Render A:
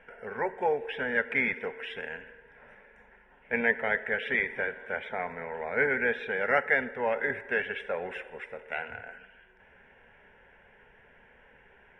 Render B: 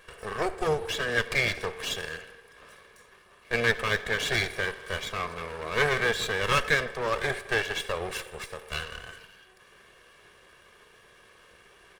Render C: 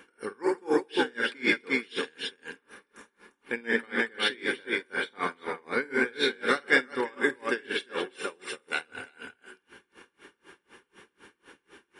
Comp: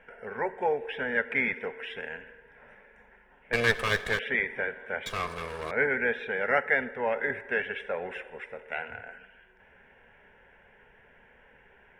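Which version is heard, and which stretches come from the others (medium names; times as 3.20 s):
A
3.53–4.19 s: from B
5.06–5.71 s: from B
not used: C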